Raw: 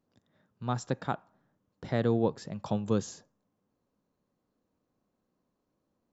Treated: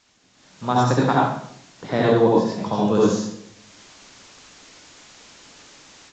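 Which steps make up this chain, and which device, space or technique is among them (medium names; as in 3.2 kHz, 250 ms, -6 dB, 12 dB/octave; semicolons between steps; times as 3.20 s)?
filmed off a television (band-pass 160–6400 Hz; peaking EQ 1 kHz +6 dB 0.2 oct; reverberation RT60 0.65 s, pre-delay 64 ms, DRR -5 dB; white noise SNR 25 dB; level rider gain up to 15.5 dB; trim -3.5 dB; AAC 32 kbps 16 kHz)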